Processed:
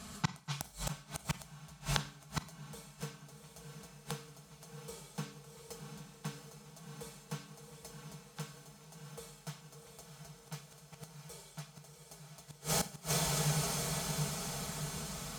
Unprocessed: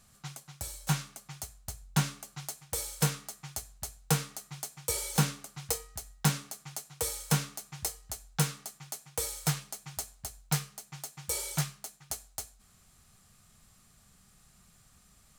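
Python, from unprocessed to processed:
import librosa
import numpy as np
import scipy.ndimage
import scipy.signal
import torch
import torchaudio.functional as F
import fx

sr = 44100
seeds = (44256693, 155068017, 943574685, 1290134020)

y = fx.peak_eq(x, sr, hz=1900.0, db=-4.0, octaves=0.38)
y = y + 0.64 * np.pad(y, (int(4.6 * sr / 1000.0), 0))[:len(y)]
y = fx.echo_diffused(y, sr, ms=722, feedback_pct=58, wet_db=-5)
y = fx.gate_flip(y, sr, shuts_db=-30.0, range_db=-30)
y = scipy.signal.sosfilt(scipy.signal.butter(2, 62.0, 'highpass', fs=sr, output='sos'), y)
y = fx.high_shelf(y, sr, hz=7200.0, db=-12.0)
y = fx.rev_schroeder(y, sr, rt60_s=0.42, comb_ms=31, drr_db=13.5)
y = y * 10.0 ** (15.0 / 20.0)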